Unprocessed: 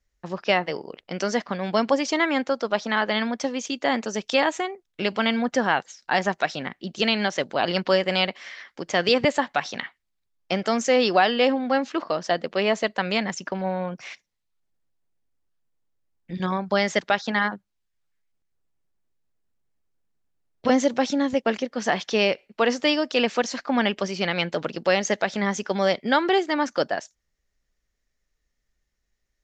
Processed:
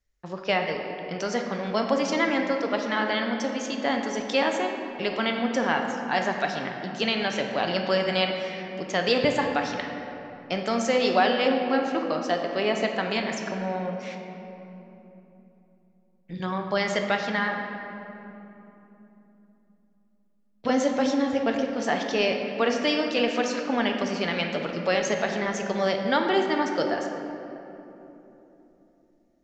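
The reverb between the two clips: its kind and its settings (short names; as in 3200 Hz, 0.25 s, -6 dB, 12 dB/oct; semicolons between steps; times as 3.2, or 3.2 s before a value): shoebox room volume 170 m³, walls hard, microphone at 0.33 m; gain -4 dB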